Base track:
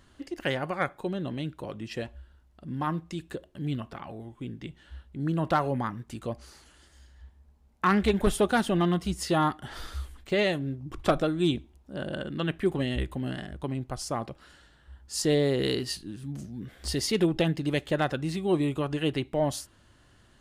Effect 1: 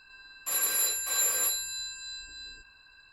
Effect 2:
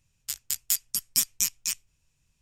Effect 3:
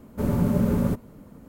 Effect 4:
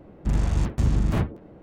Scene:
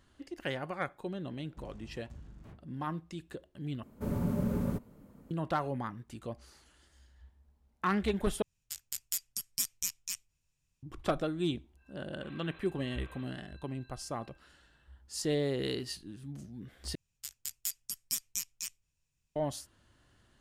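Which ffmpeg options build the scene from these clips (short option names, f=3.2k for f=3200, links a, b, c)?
-filter_complex "[2:a]asplit=2[a][b];[0:a]volume=-7dB[c];[4:a]acompressor=threshold=-32dB:ratio=6:attack=32:release=899:knee=1:detection=peak[d];[1:a]aresample=8000,aresample=44100[e];[c]asplit=4[f][g][h][i];[f]atrim=end=3.834[j];[3:a]atrim=end=1.48,asetpts=PTS-STARTPTS,volume=-9.5dB[k];[g]atrim=start=5.306:end=8.424[l];[a]atrim=end=2.41,asetpts=PTS-STARTPTS,volume=-9dB[m];[h]atrim=start=10.826:end=16.954[n];[b]atrim=end=2.41,asetpts=PTS-STARTPTS,volume=-10.5dB[o];[i]atrim=start=19.356[p];[d]atrim=end=1.62,asetpts=PTS-STARTPTS,volume=-16.5dB,afade=t=in:d=0.004:c=hsin,afade=t=out:st=1.616:d=0.004:c=hsin,adelay=1320[q];[e]atrim=end=3.12,asetpts=PTS-STARTPTS,volume=-15.5dB,afade=t=in:d=0.05,afade=t=out:st=3.07:d=0.05,adelay=11760[r];[j][k]acrossfade=d=0.004:c1=hsin:c2=hsin[s];[s][l]acrossfade=d=0.004:c1=hsin:c2=hsin[t];[t][m]acrossfade=d=0.004:c1=hsin:c2=hsin[u];[u][n]acrossfade=d=0.004:c1=hsin:c2=hsin[v];[v][o]acrossfade=d=0.004:c1=hsin:c2=hsin[w];[w][p]acrossfade=d=0.004:c1=hsin:c2=hsin[x];[x][q][r]amix=inputs=3:normalize=0"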